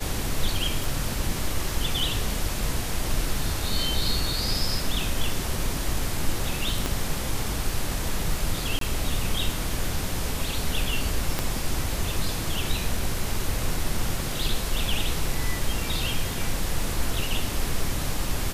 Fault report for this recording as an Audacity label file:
0.840000	0.840000	pop
6.860000	6.860000	pop
8.790000	8.810000	gap 23 ms
11.390000	11.390000	pop -10 dBFS

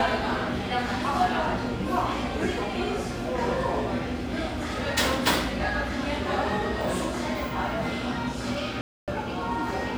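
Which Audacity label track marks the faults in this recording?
8.810000	9.080000	gap 0.267 s

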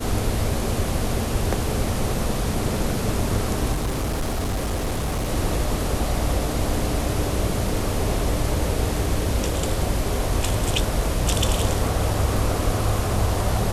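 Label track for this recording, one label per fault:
3.730000	5.290000	clipped -20.5 dBFS

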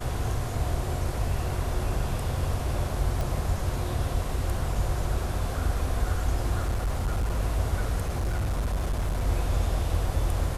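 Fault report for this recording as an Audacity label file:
3.210000	3.210000	pop
6.660000	7.400000	clipped -22.5 dBFS
8.010000	9.270000	clipped -23.5 dBFS

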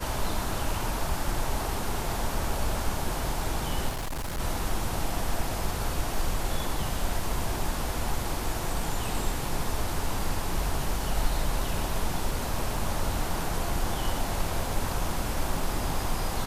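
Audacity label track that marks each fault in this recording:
3.890000	4.400000	clipped -29 dBFS

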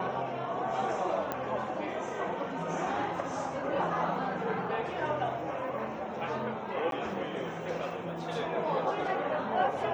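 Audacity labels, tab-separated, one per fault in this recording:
1.320000	1.320000	pop -18 dBFS
6.910000	6.920000	gap 12 ms

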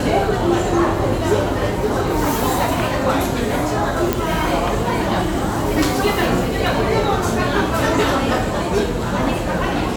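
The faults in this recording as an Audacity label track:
4.130000	4.130000	pop

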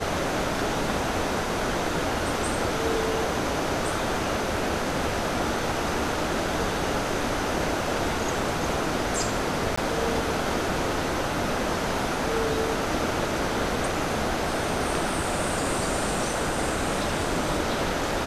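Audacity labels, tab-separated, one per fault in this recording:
9.760000	9.780000	gap 15 ms

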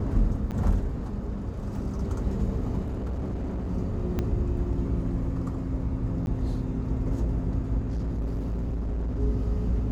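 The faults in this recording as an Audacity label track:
0.510000	0.520000	gap 8.4 ms
1.760000	1.760000	gap 2.1 ms
2.840000	3.700000	clipped -27.5 dBFS
4.190000	4.190000	pop -16 dBFS
6.260000	6.270000	gap 11 ms
7.780000	9.200000	clipped -26 dBFS

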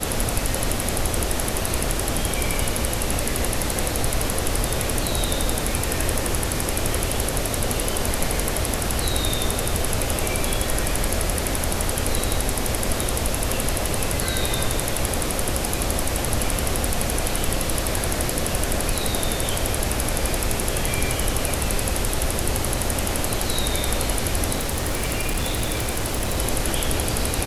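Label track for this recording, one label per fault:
24.550000	26.380000	clipped -19 dBFS

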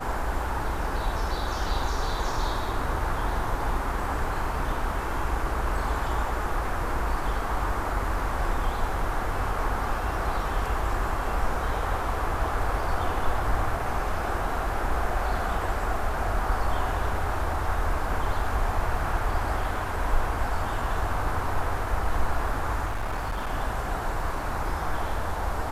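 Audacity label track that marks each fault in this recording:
22.860000	23.510000	clipped -25.5 dBFS

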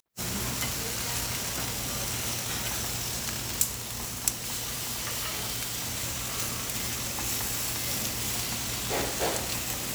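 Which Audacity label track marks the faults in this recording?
4.340000	5.350000	clipped -28.5 dBFS

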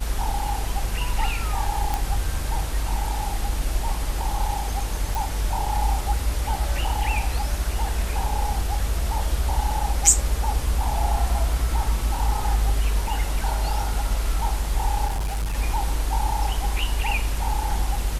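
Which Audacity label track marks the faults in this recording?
1.940000	1.940000	pop
5.150000	5.150000	pop
15.060000	15.560000	clipped -22 dBFS

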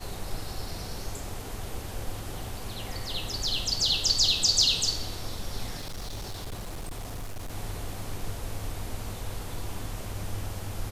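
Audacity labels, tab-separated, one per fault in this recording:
5.780000	7.520000	clipped -32 dBFS

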